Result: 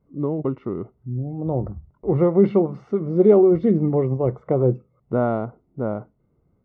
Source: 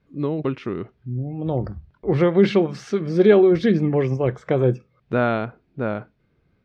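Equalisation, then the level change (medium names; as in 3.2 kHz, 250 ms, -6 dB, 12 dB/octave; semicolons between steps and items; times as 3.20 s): Savitzky-Golay filter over 65 samples; 0.0 dB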